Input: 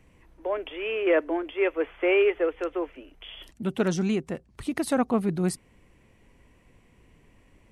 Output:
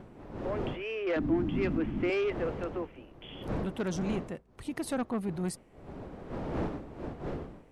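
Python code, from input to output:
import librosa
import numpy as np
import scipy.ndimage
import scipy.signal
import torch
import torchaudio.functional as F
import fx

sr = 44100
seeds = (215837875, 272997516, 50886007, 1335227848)

y = fx.dmg_wind(x, sr, seeds[0], corner_hz=430.0, level_db=-33.0)
y = 10.0 ** (-18.5 / 20.0) * np.tanh(y / 10.0 ** (-18.5 / 20.0))
y = fx.low_shelf_res(y, sr, hz=360.0, db=9.0, q=3.0, at=(1.16, 2.1))
y = y * librosa.db_to_amplitude(-6.0)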